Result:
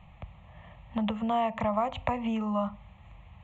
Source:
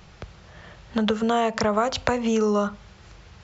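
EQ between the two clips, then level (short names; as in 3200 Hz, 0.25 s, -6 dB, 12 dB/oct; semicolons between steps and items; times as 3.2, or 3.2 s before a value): running mean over 9 samples; fixed phaser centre 1500 Hz, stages 6; -2.0 dB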